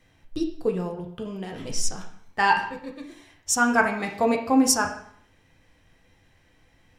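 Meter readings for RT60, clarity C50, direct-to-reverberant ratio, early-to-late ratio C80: 0.60 s, 8.5 dB, 2.5 dB, 11.5 dB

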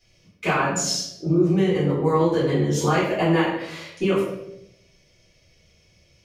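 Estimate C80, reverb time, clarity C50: 5.0 dB, 0.85 s, 2.5 dB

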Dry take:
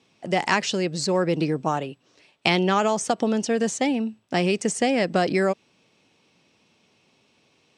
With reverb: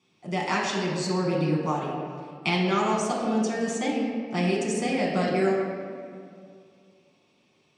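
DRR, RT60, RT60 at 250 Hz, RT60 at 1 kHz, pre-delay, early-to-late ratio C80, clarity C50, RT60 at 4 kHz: −4.5 dB, 2.3 s, 2.7 s, 2.1 s, 5 ms, 3.0 dB, 1.5 dB, 1.2 s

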